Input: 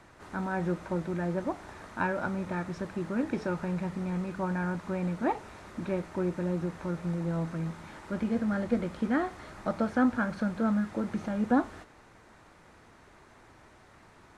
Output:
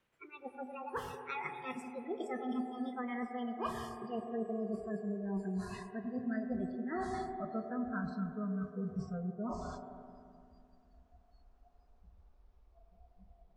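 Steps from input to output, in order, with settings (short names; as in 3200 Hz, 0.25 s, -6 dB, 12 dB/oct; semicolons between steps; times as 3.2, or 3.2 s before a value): speed glide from 160% -> 52%; reverse; compressor 10:1, threshold -39 dBFS, peak gain reduction 20 dB; reverse; spectral noise reduction 27 dB; wow and flutter 17 cents; on a send: speaker cabinet 200–2500 Hz, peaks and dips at 210 Hz -9 dB, 470 Hz +8 dB, 820 Hz +5 dB, 1300 Hz -4 dB, 1900 Hz -4 dB + reverb RT60 2.4 s, pre-delay 76 ms, DRR 6 dB; on the sum: gain +4 dB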